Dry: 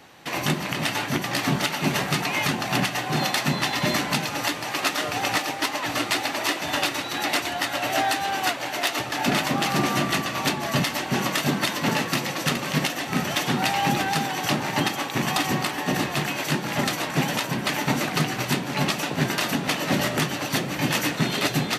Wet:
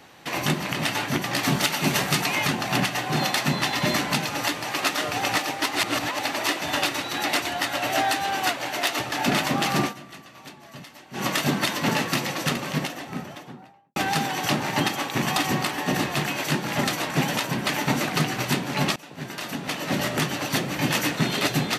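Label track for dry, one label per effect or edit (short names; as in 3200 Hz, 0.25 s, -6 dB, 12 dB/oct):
1.430000	2.350000	high shelf 4200 Hz +6 dB
5.750000	6.190000	reverse
9.820000	11.250000	dip -19 dB, fades 0.12 s
12.250000	13.960000	studio fade out
18.960000	20.330000	fade in, from -21 dB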